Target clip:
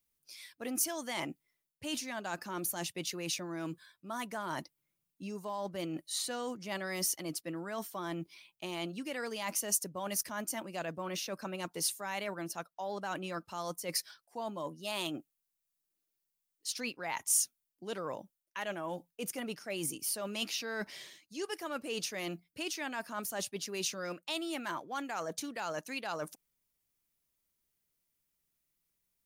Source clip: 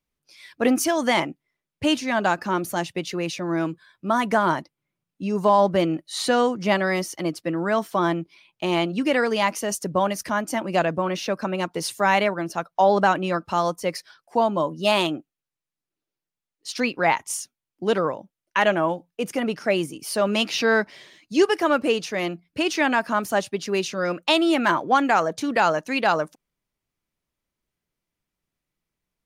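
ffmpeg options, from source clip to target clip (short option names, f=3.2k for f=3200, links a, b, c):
-af "areverse,acompressor=threshold=-30dB:ratio=6,areverse,aemphasis=mode=production:type=75kf,volume=-7dB"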